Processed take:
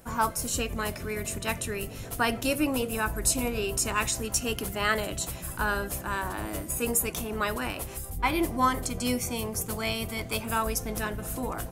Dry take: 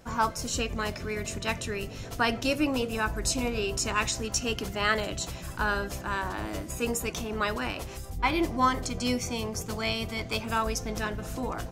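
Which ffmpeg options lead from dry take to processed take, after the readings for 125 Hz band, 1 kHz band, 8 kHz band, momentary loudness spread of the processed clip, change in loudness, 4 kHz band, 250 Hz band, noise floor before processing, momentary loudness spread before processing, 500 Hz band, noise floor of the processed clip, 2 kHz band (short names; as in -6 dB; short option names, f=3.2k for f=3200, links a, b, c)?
0.0 dB, 0.0 dB, +4.0 dB, 7 LU, +0.5 dB, -1.5 dB, 0.0 dB, -40 dBFS, 7 LU, 0.0 dB, -40 dBFS, -0.5 dB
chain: -af "highshelf=f=7.8k:t=q:w=1.5:g=10"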